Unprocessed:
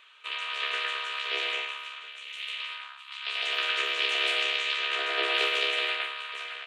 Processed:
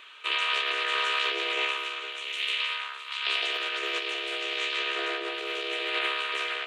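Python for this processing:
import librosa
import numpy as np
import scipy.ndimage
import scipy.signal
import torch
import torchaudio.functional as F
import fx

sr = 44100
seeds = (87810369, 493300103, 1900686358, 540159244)

y = fx.peak_eq(x, sr, hz=310.0, db=10.5, octaves=0.8)
y = fx.over_compress(y, sr, threshold_db=-33.0, ratio=-1.0)
y = fx.echo_feedback(y, sr, ms=463, feedback_pct=43, wet_db=-16.0)
y = y * 10.0 ** (3.5 / 20.0)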